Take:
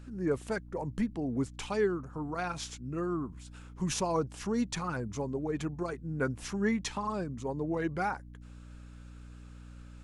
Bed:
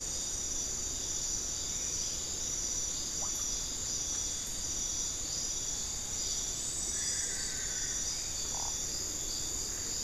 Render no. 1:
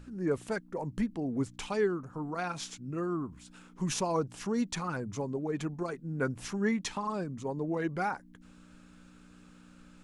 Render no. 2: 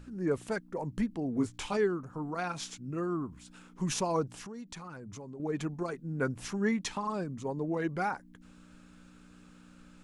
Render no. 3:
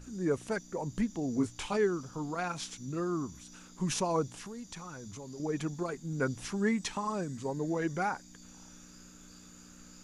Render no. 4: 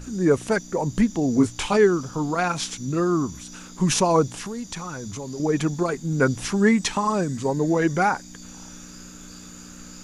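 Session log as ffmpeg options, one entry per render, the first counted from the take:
-af "bandreject=f=60:t=h:w=4,bandreject=f=120:t=h:w=4"
-filter_complex "[0:a]asettb=1/sr,asplit=3[s0][s1][s2];[s0]atrim=end=1.354[s3];[s1]atrim=start=1.35:end=1.77,asetpts=PTS-STARTPTS,afade=t=in:d=0.004:c=qsin,afade=t=out:st=0.416:d=0.004:c=qsin,asplit=2[s4][s5];[s5]adelay=19,volume=0.631[s6];[s4][s6]amix=inputs=2:normalize=0,atrim=end_sample=18522[s7];[s2]atrim=start=1.766[s8];[s3][s7]acrossfade=d=0.004:c1=hsin:c2=qsin[s9];[s9][s8]acrossfade=d=0.004:c1=qsin:c2=hsin,asettb=1/sr,asplit=3[s10][s11][s12];[s10]atrim=end=4.294[s13];[s11]atrim=start=4.29:end=5.4,asetpts=PTS-STARTPTS,afade=t=in:d=0.004:c=qsin,afade=t=out:st=1.106:d=0.004:c=qsin,acompressor=threshold=0.00794:ratio=5:attack=3.2:release=140:knee=1:detection=peak[s14];[s12]atrim=start=5.396[s15];[s13][s14]acrossfade=d=0.004:c1=hsin:c2=qsin[s16];[s16][s15]acrossfade=d=0.004:c1=qsin:c2=hsin"
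-filter_complex "[1:a]volume=0.0891[s0];[0:a][s0]amix=inputs=2:normalize=0"
-af "volume=3.76"

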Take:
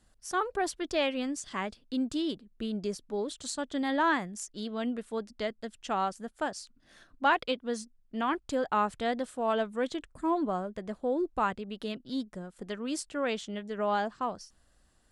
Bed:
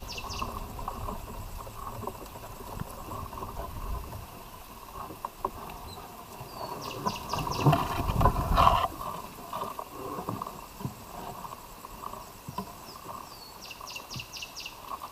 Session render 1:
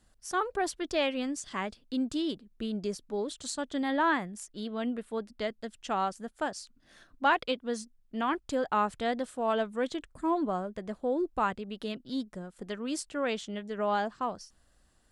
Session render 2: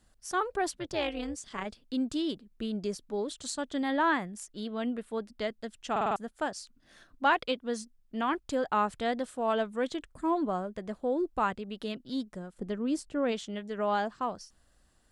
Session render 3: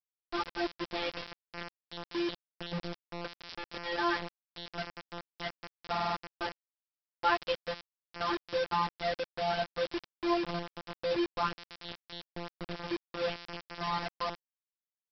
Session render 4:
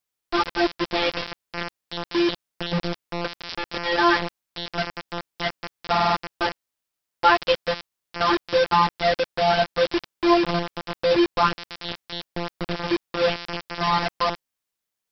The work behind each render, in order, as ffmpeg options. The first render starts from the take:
-filter_complex "[0:a]asettb=1/sr,asplit=3[s0][s1][s2];[s0]atrim=end=3.834[s3];[s1]atrim=start=3.83:end=5.41,asetpts=PTS-STARTPTS,afade=t=in:d=0.004:c=qsin,afade=t=out:st=1.576:d=0.004:c=qsin,equalizer=f=6100:w=1.5:g=-7[s4];[s2]atrim=start=5.406[s5];[s3][s4]acrossfade=d=0.004:c1=hsin:c2=qsin[s6];[s6][s5]acrossfade=d=0.004:c1=qsin:c2=hsin"
-filter_complex "[0:a]asplit=3[s0][s1][s2];[s0]afade=t=out:st=0.7:d=0.02[s3];[s1]tremolo=f=220:d=0.71,afade=t=in:st=0.7:d=0.02,afade=t=out:st=1.65:d=0.02[s4];[s2]afade=t=in:st=1.65:d=0.02[s5];[s3][s4][s5]amix=inputs=3:normalize=0,asplit=3[s6][s7][s8];[s6]afade=t=out:st=12.53:d=0.02[s9];[s7]tiltshelf=f=680:g=6.5,afade=t=in:st=12.53:d=0.02,afade=t=out:st=13.31:d=0.02[s10];[s8]afade=t=in:st=13.31:d=0.02[s11];[s9][s10][s11]amix=inputs=3:normalize=0,asplit=6[s12][s13][s14][s15][s16][s17];[s12]atrim=end=5.962[s18];[s13]atrim=start=5.908:end=5.962[s19];[s14]atrim=start=5.908:end=5.962[s20];[s15]atrim=start=5.908:end=5.962[s21];[s16]atrim=start=5.908:end=5.962[s22];[s17]atrim=start=6.158[s23];[s18][s19]acrossfade=d=0.004:c1=hsin:c2=hsin[s24];[s24][s20]acrossfade=d=0.004:c1=hsin:c2=hsin[s25];[s25][s21]acrossfade=d=0.004:c1=hsin:c2=hsin[s26];[s26][s22]acrossfade=d=0.004:c1=hsin:c2=hsin[s27];[s27][s23]acrossfade=d=0.004:c1=hsin:c2=hsin"
-af "afftfilt=real='hypot(re,im)*cos(PI*b)':imag='0':win_size=1024:overlap=0.75,aresample=11025,acrusher=bits=5:mix=0:aa=0.000001,aresample=44100"
-af "volume=3.98,alimiter=limit=0.708:level=0:latency=1"

